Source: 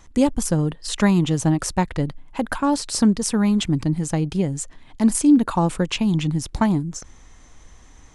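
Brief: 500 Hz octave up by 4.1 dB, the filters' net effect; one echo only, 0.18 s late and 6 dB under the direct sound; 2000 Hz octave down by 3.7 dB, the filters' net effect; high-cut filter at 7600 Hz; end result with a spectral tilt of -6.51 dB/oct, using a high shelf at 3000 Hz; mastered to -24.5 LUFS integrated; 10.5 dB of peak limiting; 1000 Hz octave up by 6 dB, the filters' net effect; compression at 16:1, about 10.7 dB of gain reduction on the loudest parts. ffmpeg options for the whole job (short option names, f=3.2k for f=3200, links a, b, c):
-af "lowpass=7.6k,equalizer=f=500:t=o:g=3.5,equalizer=f=1k:t=o:g=8,equalizer=f=2k:t=o:g=-6.5,highshelf=f=3k:g=-6,acompressor=threshold=-20dB:ratio=16,alimiter=limit=-19.5dB:level=0:latency=1,aecho=1:1:180:0.501,volume=4dB"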